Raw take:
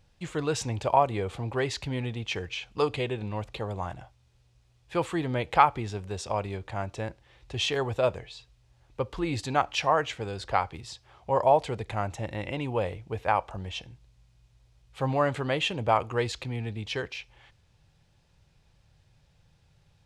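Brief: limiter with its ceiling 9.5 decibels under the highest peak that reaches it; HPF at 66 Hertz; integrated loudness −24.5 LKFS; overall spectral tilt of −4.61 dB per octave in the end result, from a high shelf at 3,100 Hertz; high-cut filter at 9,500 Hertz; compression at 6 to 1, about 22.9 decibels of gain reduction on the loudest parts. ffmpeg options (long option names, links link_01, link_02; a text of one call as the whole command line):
ffmpeg -i in.wav -af "highpass=66,lowpass=9500,highshelf=frequency=3100:gain=-5,acompressor=threshold=-41dB:ratio=6,volume=21.5dB,alimiter=limit=-13dB:level=0:latency=1" out.wav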